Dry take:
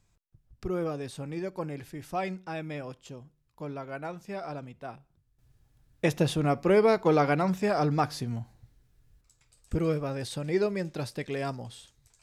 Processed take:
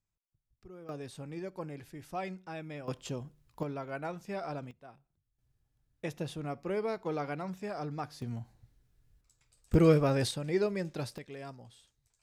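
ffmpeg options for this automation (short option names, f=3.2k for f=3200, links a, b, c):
-af "asetnsamples=n=441:p=0,asendcmd='0.89 volume volume -6dB;2.88 volume volume 6dB;3.63 volume volume -1dB;4.71 volume volume -12dB;8.22 volume volume -5dB;9.74 volume volume 5dB;10.31 volume volume -3dB;11.18 volume volume -12dB',volume=-19dB"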